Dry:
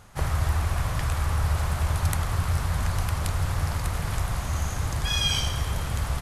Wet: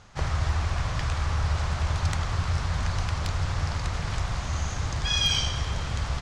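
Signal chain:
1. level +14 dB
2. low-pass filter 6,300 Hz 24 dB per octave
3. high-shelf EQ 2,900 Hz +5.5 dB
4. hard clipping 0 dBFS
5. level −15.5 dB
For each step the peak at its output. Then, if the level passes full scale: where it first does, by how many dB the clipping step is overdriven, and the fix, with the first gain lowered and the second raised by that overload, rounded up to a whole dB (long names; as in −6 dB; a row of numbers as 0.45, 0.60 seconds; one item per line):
+5.5, +1.5, +4.0, 0.0, −15.5 dBFS
step 1, 4.0 dB
step 1 +10 dB, step 5 −11.5 dB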